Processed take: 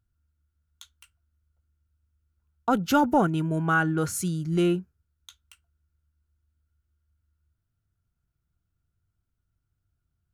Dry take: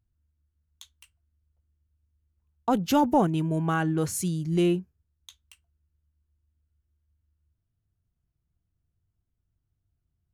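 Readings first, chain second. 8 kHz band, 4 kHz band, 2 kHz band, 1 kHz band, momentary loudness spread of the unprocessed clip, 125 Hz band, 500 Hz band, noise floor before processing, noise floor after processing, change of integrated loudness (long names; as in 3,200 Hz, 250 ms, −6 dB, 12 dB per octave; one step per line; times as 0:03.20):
0.0 dB, 0.0 dB, +8.0 dB, +1.5 dB, 6 LU, 0.0 dB, 0.0 dB, −79 dBFS, −79 dBFS, +0.5 dB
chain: parametric band 1,400 Hz +14 dB 0.22 octaves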